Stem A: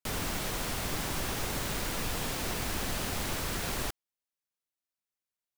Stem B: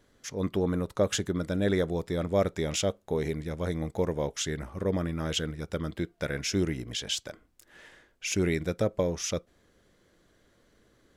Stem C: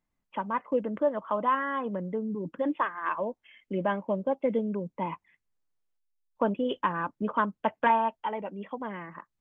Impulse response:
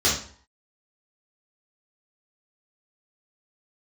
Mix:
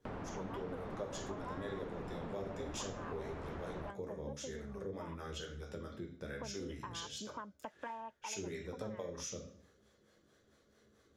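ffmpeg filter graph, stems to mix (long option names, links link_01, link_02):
-filter_complex "[0:a]lowpass=1100,volume=2.5dB[link_01];[1:a]acrossover=split=420[link_02][link_03];[link_02]aeval=exprs='val(0)*(1-0.7/2+0.7/2*cos(2*PI*4.5*n/s))':channel_layout=same[link_04];[link_03]aeval=exprs='val(0)*(1-0.7/2-0.7/2*cos(2*PI*4.5*n/s))':channel_layout=same[link_05];[link_04][link_05]amix=inputs=2:normalize=0,volume=-6dB,asplit=2[link_06][link_07];[link_07]volume=-14dB[link_08];[2:a]acompressor=threshold=-37dB:ratio=2,volume=-4.5dB[link_09];[3:a]atrim=start_sample=2205[link_10];[link_08][link_10]afir=irnorm=-1:irlink=0[link_11];[link_01][link_06][link_09][link_11]amix=inputs=4:normalize=0,lowshelf=frequency=73:gain=-10.5,acompressor=threshold=-45dB:ratio=2.5"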